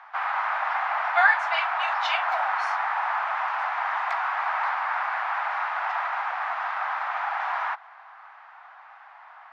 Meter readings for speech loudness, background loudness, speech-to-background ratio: −25.5 LKFS, −27.0 LKFS, 1.5 dB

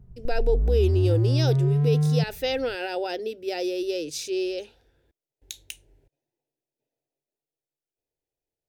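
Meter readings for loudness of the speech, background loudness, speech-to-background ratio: −28.0 LKFS, −23.5 LKFS, −4.5 dB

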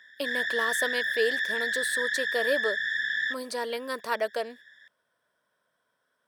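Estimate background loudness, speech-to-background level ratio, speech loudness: −28.0 LKFS, −4.0 dB, −32.0 LKFS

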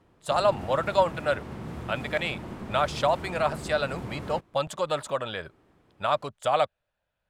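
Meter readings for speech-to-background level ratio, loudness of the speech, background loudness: 11.0 dB, −28.0 LKFS, −39.0 LKFS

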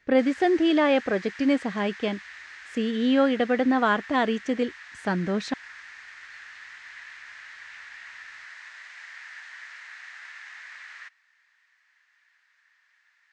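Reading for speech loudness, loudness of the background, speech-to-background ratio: −24.5 LKFS, −42.0 LKFS, 17.5 dB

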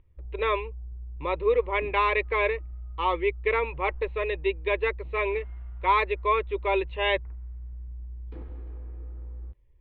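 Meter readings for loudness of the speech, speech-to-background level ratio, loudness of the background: −27.0 LKFS, 14.5 dB, −41.5 LKFS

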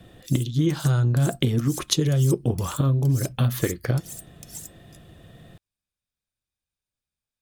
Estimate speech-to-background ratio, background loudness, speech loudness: 16.0 dB, −39.5 LKFS, −23.5 LKFS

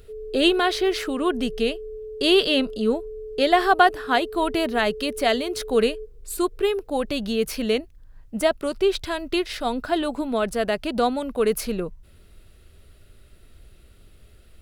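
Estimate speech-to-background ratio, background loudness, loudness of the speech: 13.5 dB, −36.5 LKFS, −23.0 LKFS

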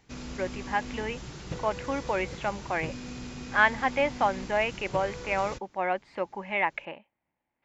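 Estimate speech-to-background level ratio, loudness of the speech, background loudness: 11.0 dB, −29.5 LKFS, −40.5 LKFS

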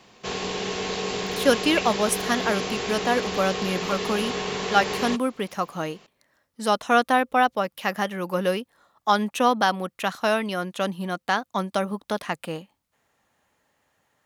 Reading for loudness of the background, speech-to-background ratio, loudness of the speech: −28.5 LKFS, 3.5 dB, −25.0 LKFS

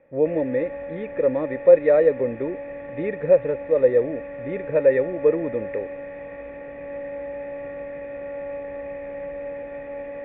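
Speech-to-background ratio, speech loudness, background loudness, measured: 13.0 dB, −21.5 LKFS, −34.5 LKFS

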